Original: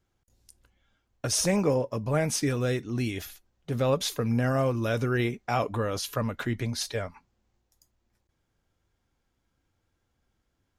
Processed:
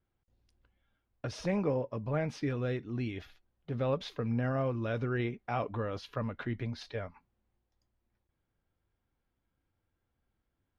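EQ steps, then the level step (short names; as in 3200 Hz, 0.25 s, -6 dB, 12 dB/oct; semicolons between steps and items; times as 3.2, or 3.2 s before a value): air absorption 340 m; bell 6200 Hz +4.5 dB 2.2 oct; -5.5 dB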